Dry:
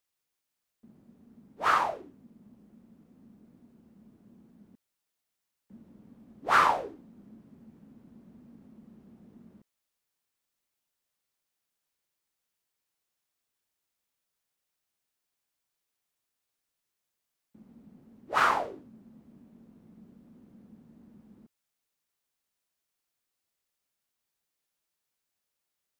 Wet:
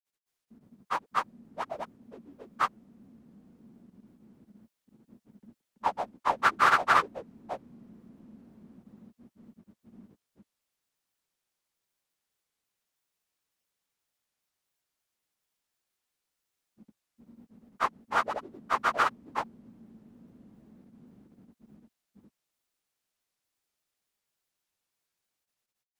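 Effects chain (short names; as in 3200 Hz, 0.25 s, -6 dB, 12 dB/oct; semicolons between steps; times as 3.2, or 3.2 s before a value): grains, grains 29/s, spray 0.878 s; gain +4 dB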